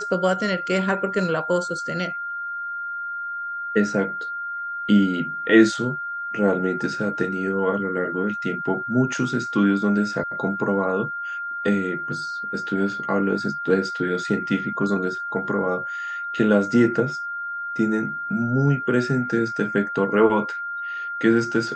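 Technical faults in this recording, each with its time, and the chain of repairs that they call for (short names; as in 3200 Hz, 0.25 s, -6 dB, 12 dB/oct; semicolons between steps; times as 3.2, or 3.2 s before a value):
tone 1400 Hz -27 dBFS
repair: notch 1400 Hz, Q 30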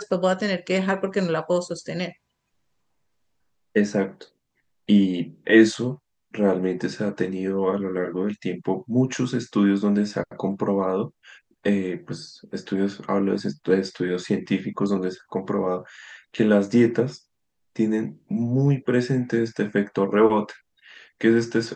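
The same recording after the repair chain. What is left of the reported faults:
none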